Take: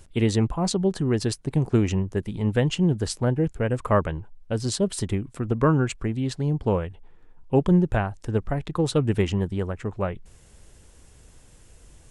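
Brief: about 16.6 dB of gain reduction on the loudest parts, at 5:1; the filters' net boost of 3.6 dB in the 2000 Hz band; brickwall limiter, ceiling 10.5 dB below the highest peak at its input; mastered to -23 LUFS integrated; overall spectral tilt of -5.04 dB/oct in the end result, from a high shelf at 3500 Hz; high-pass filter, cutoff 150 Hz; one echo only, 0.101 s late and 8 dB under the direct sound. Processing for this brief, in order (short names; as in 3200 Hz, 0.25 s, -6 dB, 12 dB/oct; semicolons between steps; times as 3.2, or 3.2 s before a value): HPF 150 Hz; bell 2000 Hz +3.5 dB; high shelf 3500 Hz +4.5 dB; compressor 5:1, threshold -35 dBFS; limiter -29.5 dBFS; echo 0.101 s -8 dB; gain +17.5 dB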